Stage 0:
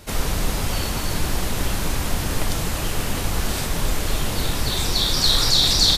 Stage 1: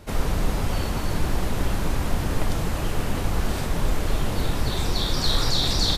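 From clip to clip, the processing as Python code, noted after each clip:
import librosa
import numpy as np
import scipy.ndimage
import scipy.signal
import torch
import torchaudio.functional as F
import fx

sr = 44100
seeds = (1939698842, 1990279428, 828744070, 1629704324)

y = fx.high_shelf(x, sr, hz=2300.0, db=-10.0)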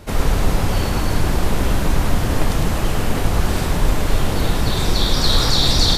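y = x + 10.0 ** (-6.0 / 20.0) * np.pad(x, (int(106 * sr / 1000.0), 0))[:len(x)]
y = y * 10.0 ** (5.5 / 20.0)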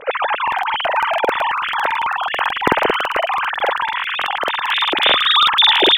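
y = fx.sine_speech(x, sr)
y = fx.buffer_crackle(y, sr, first_s=0.43, period_s=0.11, block=2048, kind='repeat')
y = y * 10.0 ** (-2.5 / 20.0)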